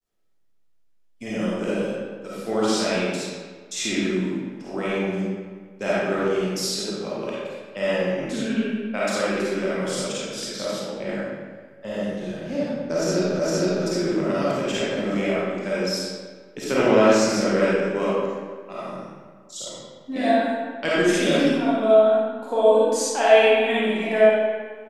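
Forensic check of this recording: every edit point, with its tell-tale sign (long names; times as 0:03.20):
0:13.39: the same again, the last 0.46 s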